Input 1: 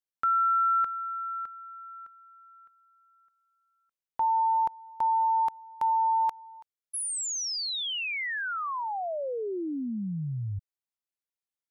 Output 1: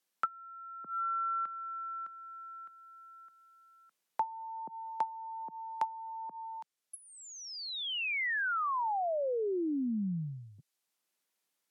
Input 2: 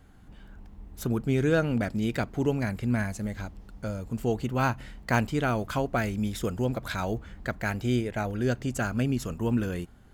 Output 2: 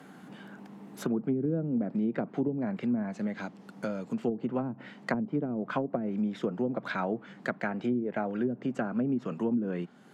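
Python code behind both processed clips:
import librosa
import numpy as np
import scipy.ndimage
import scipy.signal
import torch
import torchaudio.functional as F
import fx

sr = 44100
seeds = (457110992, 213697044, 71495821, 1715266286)

y = scipy.signal.sosfilt(scipy.signal.butter(6, 160.0, 'highpass', fs=sr, output='sos'), x)
y = fx.env_lowpass_down(y, sr, base_hz=300.0, full_db=-22.5)
y = fx.band_squash(y, sr, depth_pct=40)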